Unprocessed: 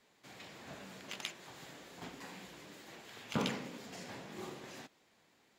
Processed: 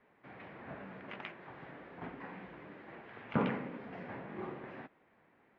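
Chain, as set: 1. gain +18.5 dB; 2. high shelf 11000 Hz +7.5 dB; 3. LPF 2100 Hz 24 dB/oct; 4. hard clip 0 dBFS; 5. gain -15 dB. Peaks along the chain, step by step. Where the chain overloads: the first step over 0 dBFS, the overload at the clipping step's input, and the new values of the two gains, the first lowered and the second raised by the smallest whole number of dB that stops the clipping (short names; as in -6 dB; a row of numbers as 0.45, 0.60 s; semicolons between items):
-2.5, -1.5, -3.5, -3.5, -18.5 dBFS; no overload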